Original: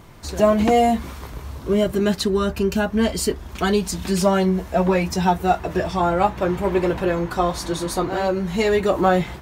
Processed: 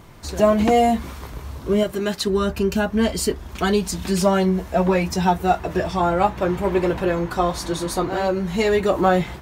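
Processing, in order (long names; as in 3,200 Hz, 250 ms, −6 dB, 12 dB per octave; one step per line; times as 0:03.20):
0:01.83–0:02.27: low-shelf EQ 330 Hz −8.5 dB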